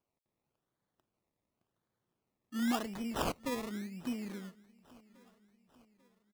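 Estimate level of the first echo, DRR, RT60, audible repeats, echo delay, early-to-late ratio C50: −23.5 dB, no reverb audible, no reverb audible, 3, 844 ms, no reverb audible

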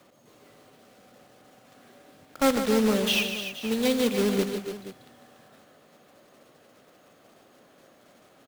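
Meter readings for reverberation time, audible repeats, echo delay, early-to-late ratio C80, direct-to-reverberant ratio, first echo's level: no reverb audible, 4, 63 ms, no reverb audible, no reverb audible, −19.0 dB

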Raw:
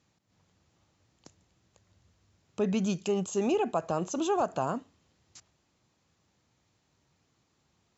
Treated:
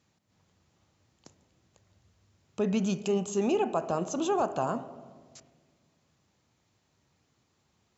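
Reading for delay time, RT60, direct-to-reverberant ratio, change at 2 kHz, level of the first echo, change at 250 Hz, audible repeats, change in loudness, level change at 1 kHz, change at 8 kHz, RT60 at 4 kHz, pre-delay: no echo audible, 1.6 s, 11.5 dB, 0.0 dB, no echo audible, +0.5 dB, no echo audible, +0.5 dB, +0.5 dB, can't be measured, 1.0 s, 5 ms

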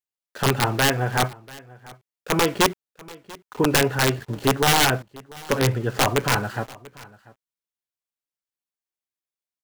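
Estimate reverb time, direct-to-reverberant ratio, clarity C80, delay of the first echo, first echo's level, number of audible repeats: no reverb audible, no reverb audible, no reverb audible, 690 ms, −22.0 dB, 1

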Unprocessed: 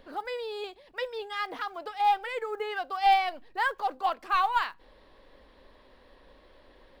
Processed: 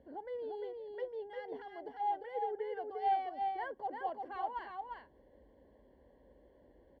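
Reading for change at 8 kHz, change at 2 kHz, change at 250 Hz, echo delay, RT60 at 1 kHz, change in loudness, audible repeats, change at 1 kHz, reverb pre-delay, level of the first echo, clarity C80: can't be measured, −17.5 dB, −3.0 dB, 350 ms, no reverb audible, −10.0 dB, 1, −9.5 dB, no reverb audible, −4.5 dB, no reverb audible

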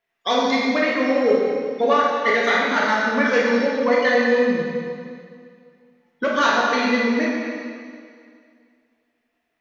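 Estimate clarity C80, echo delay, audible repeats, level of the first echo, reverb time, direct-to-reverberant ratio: 1.0 dB, no echo audible, no echo audible, no echo audible, 2.2 s, −4.5 dB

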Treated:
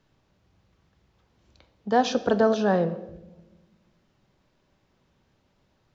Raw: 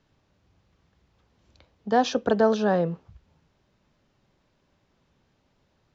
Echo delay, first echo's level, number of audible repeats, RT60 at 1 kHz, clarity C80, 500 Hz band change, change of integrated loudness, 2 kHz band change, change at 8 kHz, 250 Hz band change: no echo audible, no echo audible, no echo audible, 0.80 s, 16.5 dB, 0.0 dB, 0.0 dB, +0.5 dB, can't be measured, +0.5 dB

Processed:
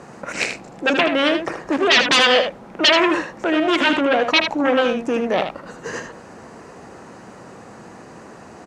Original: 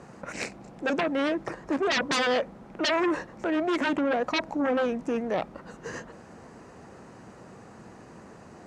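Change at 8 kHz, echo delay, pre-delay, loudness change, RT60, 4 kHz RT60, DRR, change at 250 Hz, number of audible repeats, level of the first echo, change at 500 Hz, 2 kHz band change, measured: +10.0 dB, 78 ms, no reverb audible, +10.5 dB, no reverb audible, no reverb audible, no reverb audible, +7.0 dB, 1, −7.5 dB, +8.5 dB, +12.0 dB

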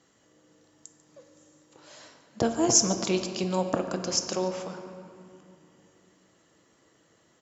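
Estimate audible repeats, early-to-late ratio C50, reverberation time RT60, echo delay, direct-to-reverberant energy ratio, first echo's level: 1, 7.0 dB, 2.6 s, 144 ms, 5.5 dB, −16.5 dB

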